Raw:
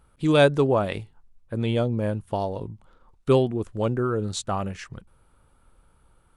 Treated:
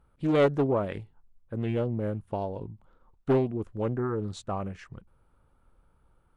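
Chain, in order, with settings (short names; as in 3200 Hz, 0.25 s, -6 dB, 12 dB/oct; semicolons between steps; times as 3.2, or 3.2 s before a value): high shelf 2800 Hz -11 dB; Doppler distortion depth 0.47 ms; gain -4.5 dB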